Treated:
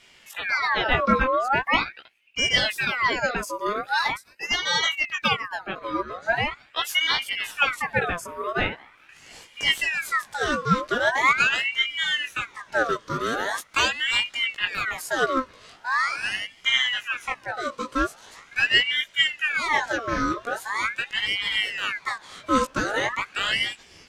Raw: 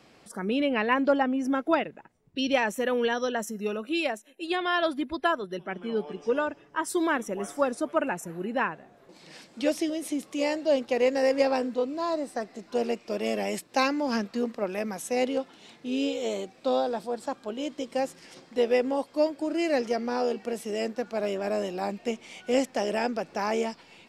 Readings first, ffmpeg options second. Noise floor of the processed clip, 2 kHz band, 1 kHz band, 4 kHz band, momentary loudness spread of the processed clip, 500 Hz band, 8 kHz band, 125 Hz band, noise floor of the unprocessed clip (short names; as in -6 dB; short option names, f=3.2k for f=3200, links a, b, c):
-54 dBFS, +11.5 dB, +5.0 dB, +13.5 dB, 9 LU, -4.5 dB, +5.0 dB, +8.5 dB, -57 dBFS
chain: -af "flanger=delay=15:depth=4.5:speed=1.5,aeval=exprs='val(0)*sin(2*PI*1700*n/s+1700*0.55/0.42*sin(2*PI*0.42*n/s))':c=same,volume=8.5dB"